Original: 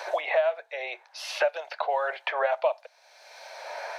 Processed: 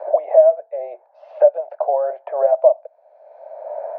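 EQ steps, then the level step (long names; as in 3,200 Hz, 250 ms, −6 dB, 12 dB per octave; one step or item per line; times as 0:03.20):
low-pass with resonance 620 Hz, resonance Q 4.9
0.0 dB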